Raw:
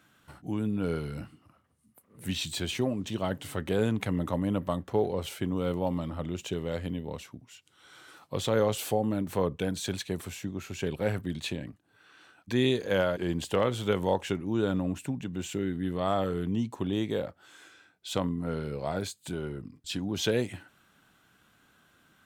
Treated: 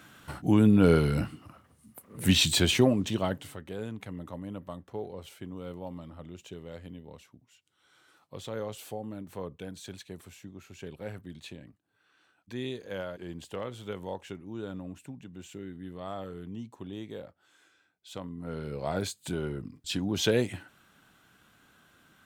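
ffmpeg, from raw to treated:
-af "volume=13.3,afade=t=out:st=2.45:d=0.82:silence=0.354813,afade=t=out:st=3.27:d=0.32:silence=0.266073,afade=t=in:st=18.28:d=0.8:silence=0.237137"

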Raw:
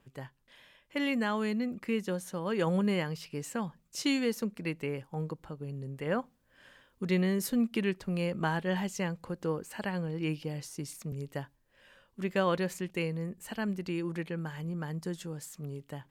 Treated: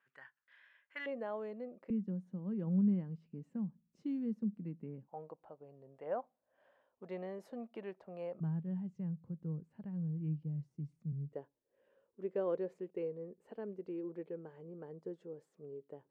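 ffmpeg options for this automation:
-af "asetnsamples=n=441:p=0,asendcmd='1.06 bandpass f 570;1.9 bandpass f 200;5.08 bandpass f 670;8.4 bandpass f 150;11.33 bandpass f 440',bandpass=f=1600:t=q:w=3.5:csg=0"

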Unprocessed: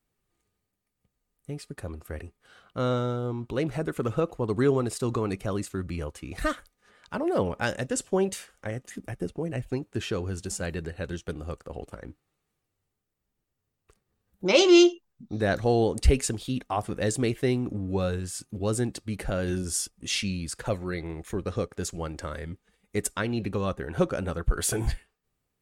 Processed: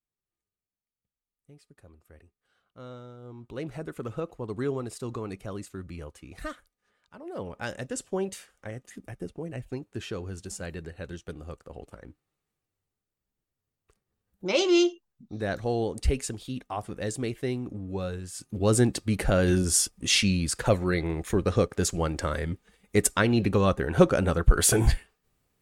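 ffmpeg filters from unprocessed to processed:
-af "volume=6.31,afade=t=in:st=3.17:d=0.49:silence=0.316228,afade=t=out:st=6.17:d=1:silence=0.316228,afade=t=in:st=7.17:d=0.61:silence=0.251189,afade=t=in:st=18.32:d=0.46:silence=0.281838"

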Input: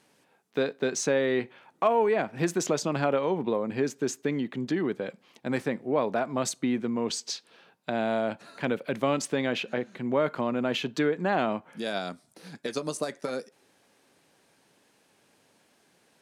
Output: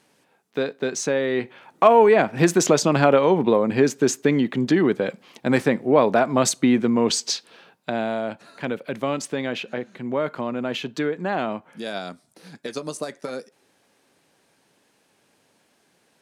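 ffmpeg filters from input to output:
-af "volume=2.99,afade=t=in:st=1.32:d=0.56:silence=0.446684,afade=t=out:st=7.23:d=0.92:silence=0.375837"

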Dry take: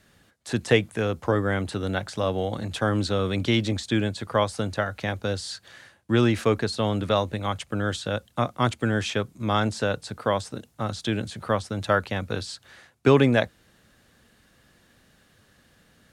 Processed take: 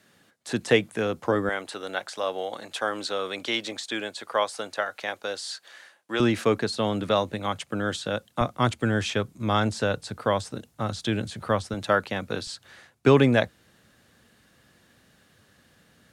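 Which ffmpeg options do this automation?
-af "asetnsamples=n=441:p=0,asendcmd='1.49 highpass f 510;6.2 highpass f 140;8.41 highpass f 53;11.74 highpass f 150;12.47 highpass f 70',highpass=160"

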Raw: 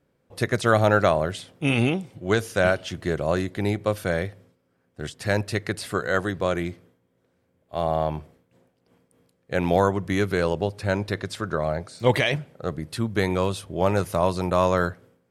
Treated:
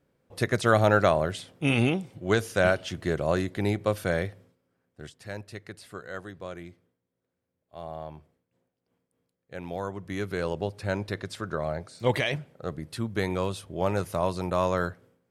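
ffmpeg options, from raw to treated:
-af "volume=2.37,afade=t=out:st=4.28:d=0.97:silence=0.237137,afade=t=in:st=9.77:d=0.9:silence=0.334965"

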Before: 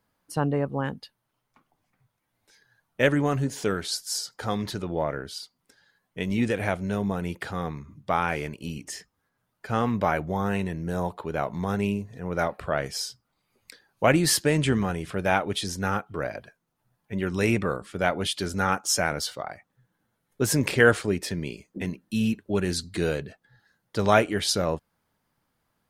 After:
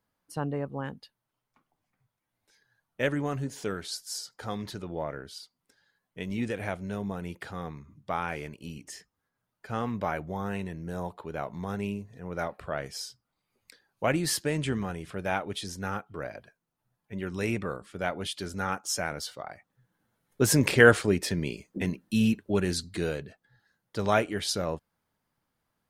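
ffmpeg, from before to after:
-af "volume=1.12,afade=t=in:st=19.33:d=1.08:silence=0.421697,afade=t=out:st=22.22:d=0.91:silence=0.501187"

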